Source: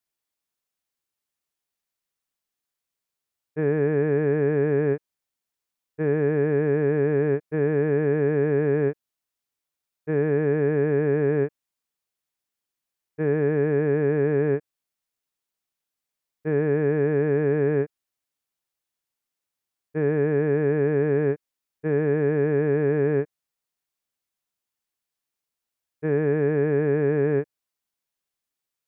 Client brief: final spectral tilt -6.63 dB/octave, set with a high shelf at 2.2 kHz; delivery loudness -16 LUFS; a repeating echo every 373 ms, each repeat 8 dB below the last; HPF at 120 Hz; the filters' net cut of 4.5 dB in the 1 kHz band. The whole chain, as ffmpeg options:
-af "highpass=120,equalizer=f=1000:t=o:g=-8,highshelf=f=2200:g=6,aecho=1:1:373|746|1119|1492|1865:0.398|0.159|0.0637|0.0255|0.0102,volume=2.51"

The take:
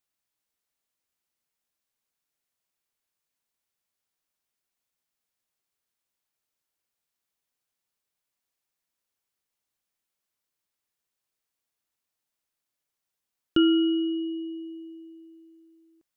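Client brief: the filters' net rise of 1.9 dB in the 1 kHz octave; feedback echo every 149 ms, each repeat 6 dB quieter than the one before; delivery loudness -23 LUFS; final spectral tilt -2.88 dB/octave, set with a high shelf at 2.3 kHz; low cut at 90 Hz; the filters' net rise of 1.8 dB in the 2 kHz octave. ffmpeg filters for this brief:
-af "highpass=90,equalizer=f=1000:t=o:g=3.5,equalizer=f=2000:t=o:g=3,highshelf=f=2300:g=-5,aecho=1:1:149|298|447|596|745|894:0.501|0.251|0.125|0.0626|0.0313|0.0157,volume=1.33"

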